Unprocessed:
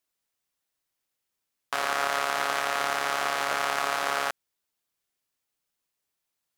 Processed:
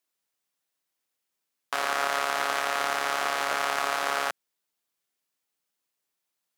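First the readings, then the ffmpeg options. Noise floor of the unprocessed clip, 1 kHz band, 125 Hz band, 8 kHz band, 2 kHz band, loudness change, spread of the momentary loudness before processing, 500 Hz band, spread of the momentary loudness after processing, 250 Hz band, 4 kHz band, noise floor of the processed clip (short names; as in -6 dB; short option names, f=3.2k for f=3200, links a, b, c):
-83 dBFS, 0.0 dB, n/a, 0.0 dB, 0.0 dB, 0.0 dB, 4 LU, 0.0 dB, 4 LU, -0.5 dB, 0.0 dB, -83 dBFS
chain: -af "highpass=150"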